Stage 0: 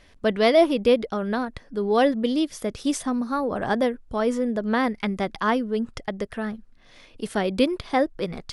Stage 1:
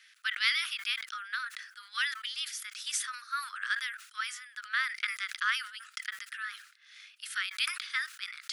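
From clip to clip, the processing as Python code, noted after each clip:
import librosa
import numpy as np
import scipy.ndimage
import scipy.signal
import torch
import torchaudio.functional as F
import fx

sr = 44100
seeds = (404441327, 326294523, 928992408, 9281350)

y = scipy.signal.sosfilt(scipy.signal.butter(12, 1300.0, 'highpass', fs=sr, output='sos'), x)
y = fx.sustainer(y, sr, db_per_s=99.0)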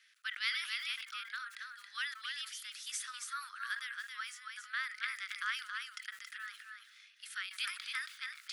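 y = x + 10.0 ** (-5.0 / 20.0) * np.pad(x, (int(275 * sr / 1000.0), 0))[:len(x)]
y = y * 10.0 ** (-7.5 / 20.0)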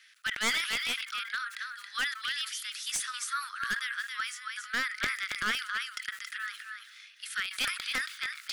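y = np.minimum(x, 2.0 * 10.0 ** (-32.5 / 20.0) - x)
y = y * 10.0 ** (8.0 / 20.0)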